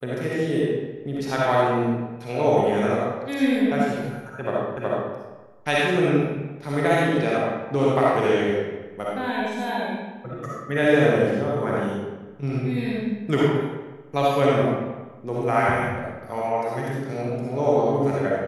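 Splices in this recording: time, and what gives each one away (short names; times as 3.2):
4.77 repeat of the last 0.37 s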